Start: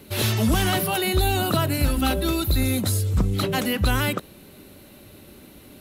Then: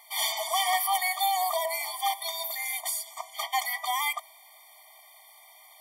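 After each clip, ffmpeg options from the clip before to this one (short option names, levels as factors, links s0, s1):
-af "bandreject=f=327.6:t=h:w=4,bandreject=f=655.2:t=h:w=4,bandreject=f=982.8:t=h:w=4,bandreject=f=1310.4:t=h:w=4,bandreject=f=1638:t=h:w=4,bandreject=f=1965.6:t=h:w=4,bandreject=f=2293.2:t=h:w=4,bandreject=f=2620.8:t=h:w=4,bandreject=f=2948.4:t=h:w=4,bandreject=f=3276:t=h:w=4,bandreject=f=3603.6:t=h:w=4,bandreject=f=3931.2:t=h:w=4,bandreject=f=4258.8:t=h:w=4,bandreject=f=4586.4:t=h:w=4,bandreject=f=4914:t=h:w=4,bandreject=f=5241.6:t=h:w=4,bandreject=f=5569.2:t=h:w=4,bandreject=f=5896.8:t=h:w=4,bandreject=f=6224.4:t=h:w=4,bandreject=f=6552:t=h:w=4,bandreject=f=6879.6:t=h:w=4,bandreject=f=7207.2:t=h:w=4,bandreject=f=7534.8:t=h:w=4,bandreject=f=7862.4:t=h:w=4,bandreject=f=8190:t=h:w=4,bandreject=f=8517.6:t=h:w=4,bandreject=f=8845.2:t=h:w=4,bandreject=f=9172.8:t=h:w=4,bandreject=f=9500.4:t=h:w=4,bandreject=f=9828:t=h:w=4,bandreject=f=10155.6:t=h:w=4,bandreject=f=10483.2:t=h:w=4,bandreject=f=10810.8:t=h:w=4,bandreject=f=11138.4:t=h:w=4,bandreject=f=11466:t=h:w=4,bandreject=f=11793.6:t=h:w=4,bandreject=f=12121.2:t=h:w=4,bandreject=f=12448.8:t=h:w=4,afftfilt=real='re*eq(mod(floor(b*sr/1024/610),2),1)':imag='im*eq(mod(floor(b*sr/1024/610),2),1)':win_size=1024:overlap=0.75,volume=1.26"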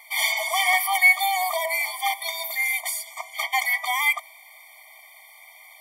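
-af "equalizer=f=2200:w=6.1:g=14.5,volume=1.26"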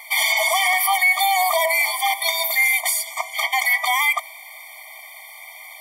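-af "alimiter=limit=0.126:level=0:latency=1:release=75,volume=2.66"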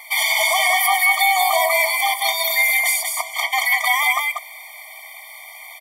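-af "aecho=1:1:190:0.631"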